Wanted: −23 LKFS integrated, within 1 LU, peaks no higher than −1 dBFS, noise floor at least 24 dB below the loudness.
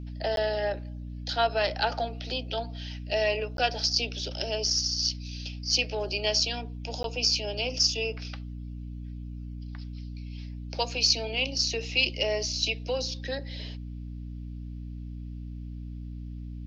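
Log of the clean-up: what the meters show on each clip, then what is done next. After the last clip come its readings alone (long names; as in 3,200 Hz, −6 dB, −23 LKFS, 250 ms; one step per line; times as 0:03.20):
number of dropouts 3; longest dropout 12 ms; mains hum 60 Hz; hum harmonics up to 300 Hz; level of the hum −35 dBFS; integrated loudness −28.0 LKFS; sample peak −10.0 dBFS; target loudness −23.0 LKFS
→ repair the gap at 0:00.36/0:03.57/0:07.03, 12 ms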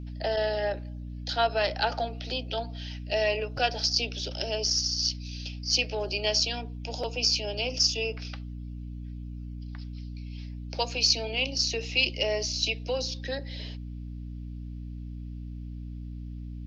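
number of dropouts 0; mains hum 60 Hz; hum harmonics up to 300 Hz; level of the hum −35 dBFS
→ hum removal 60 Hz, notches 5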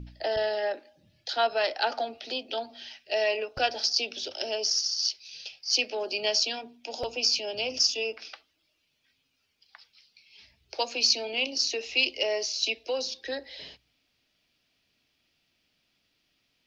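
mains hum none found; integrated loudness −27.5 LKFS; sample peak −10.5 dBFS; target loudness −23.0 LKFS
→ level +4.5 dB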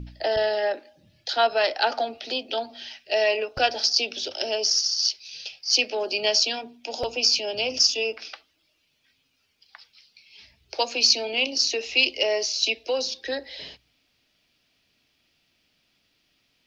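integrated loudness −23.5 LKFS; sample peak −6.0 dBFS; background noise floor −70 dBFS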